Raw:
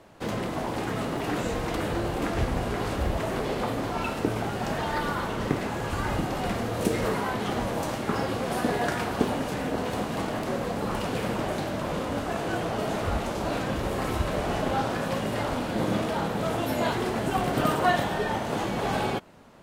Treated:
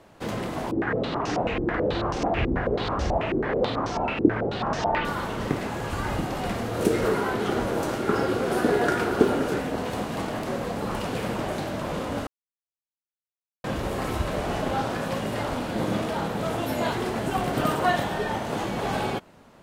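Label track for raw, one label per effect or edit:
0.710000	5.050000	stepped low-pass 9.2 Hz 340–5800 Hz
6.730000	9.590000	small resonant body resonances 380/1400 Hz, height 7 dB -> 11 dB, ringing for 20 ms
12.270000	13.640000	mute

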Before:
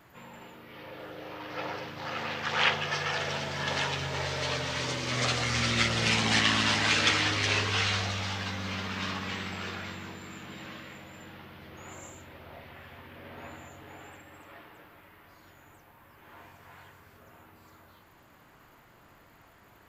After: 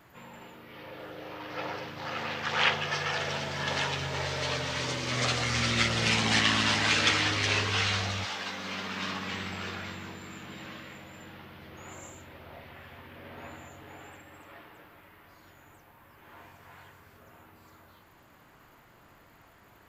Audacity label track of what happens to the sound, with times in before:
8.240000	9.320000	HPF 360 Hz -> 110 Hz

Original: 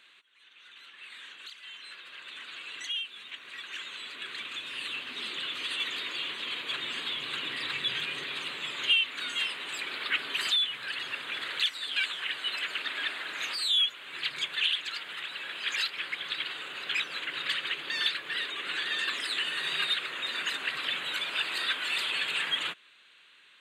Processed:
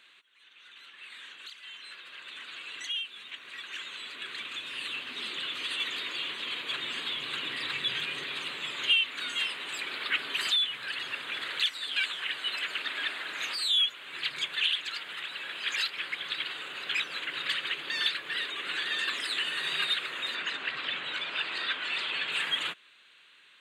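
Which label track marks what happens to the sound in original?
20.350000	22.320000	air absorption 100 m

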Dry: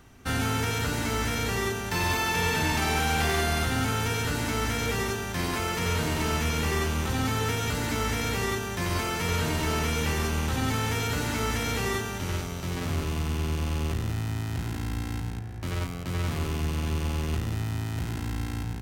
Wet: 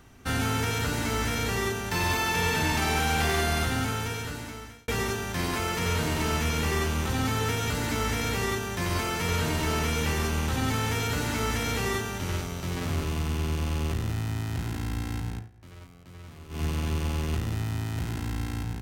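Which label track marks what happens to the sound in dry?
3.630000	4.880000	fade out linear
15.360000	16.630000	dip -16.5 dB, fades 0.14 s

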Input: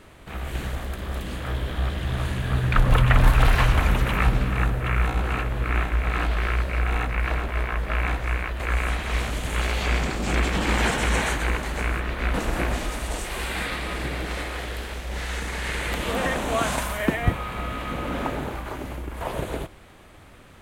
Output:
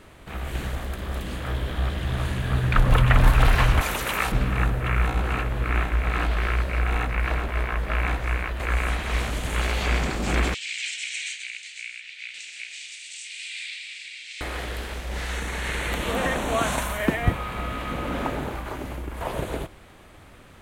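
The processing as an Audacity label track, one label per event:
3.810000	4.320000	tone controls bass -14 dB, treble +10 dB
10.540000	14.410000	elliptic band-pass 2300–8100 Hz
15.330000	17.020000	notch 4900 Hz, Q 7.5

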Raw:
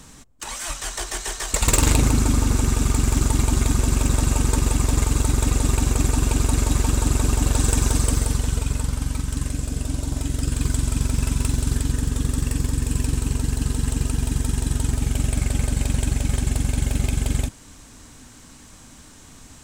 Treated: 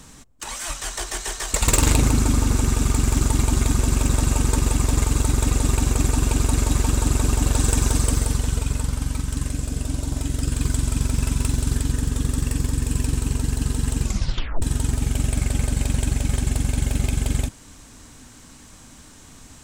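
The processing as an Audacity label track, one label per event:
14.020000	14.020000	tape stop 0.60 s

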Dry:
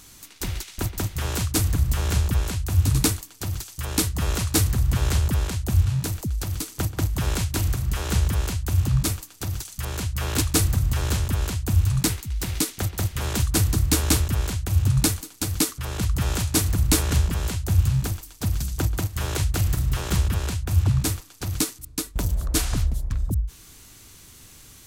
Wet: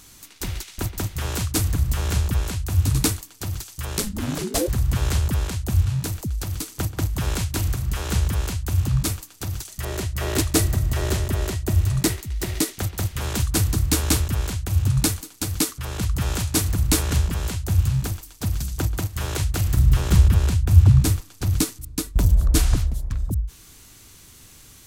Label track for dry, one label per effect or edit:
3.970000	4.670000	ring modulator 92 Hz -> 460 Hz
9.680000	12.750000	small resonant body resonances 380/620/1900 Hz, height 10 dB, ringing for 40 ms
19.740000	22.760000	low shelf 240 Hz +8.5 dB

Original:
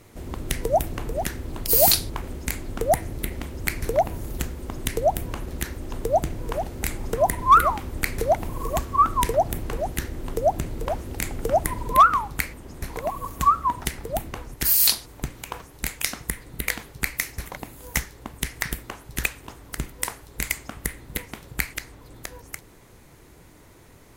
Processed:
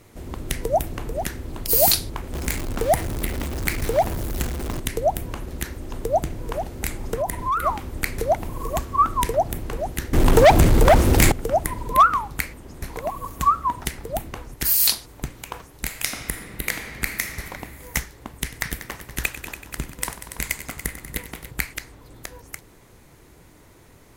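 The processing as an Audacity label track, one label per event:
2.330000	4.800000	zero-crossing step of -26.5 dBFS
7.170000	7.660000	compressor, threshold -20 dBFS
10.130000	11.320000	sample leveller passes 5
15.850000	17.490000	reverb throw, RT60 2.3 s, DRR 4 dB
18.430000	21.510000	multi-head echo 95 ms, heads all three, feedback 44%, level -14 dB

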